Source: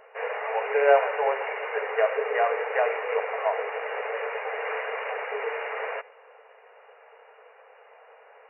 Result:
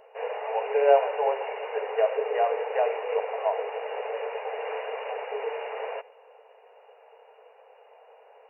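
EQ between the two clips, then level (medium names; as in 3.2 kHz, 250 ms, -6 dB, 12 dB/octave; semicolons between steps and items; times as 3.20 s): high-order bell 1.6 kHz -9.5 dB 1.2 oct; 0.0 dB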